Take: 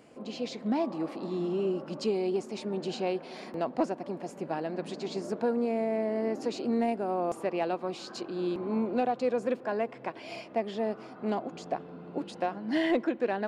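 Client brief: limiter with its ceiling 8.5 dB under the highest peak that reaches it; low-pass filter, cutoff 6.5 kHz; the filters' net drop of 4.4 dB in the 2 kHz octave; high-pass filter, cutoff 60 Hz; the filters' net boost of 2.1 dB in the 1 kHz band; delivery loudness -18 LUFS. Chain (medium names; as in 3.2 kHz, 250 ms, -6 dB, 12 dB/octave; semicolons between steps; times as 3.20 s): high-pass 60 Hz; low-pass 6.5 kHz; peaking EQ 1 kHz +4.5 dB; peaking EQ 2 kHz -7 dB; trim +16 dB; peak limiter -7.5 dBFS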